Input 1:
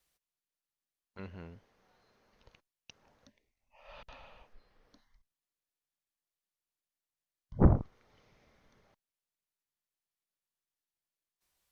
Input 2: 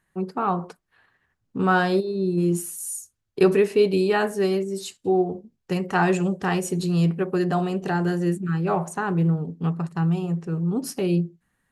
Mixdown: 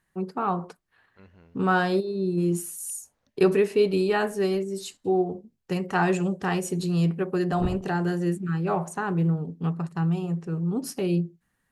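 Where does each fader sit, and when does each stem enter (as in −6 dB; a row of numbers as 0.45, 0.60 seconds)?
−7.5, −2.5 decibels; 0.00, 0.00 seconds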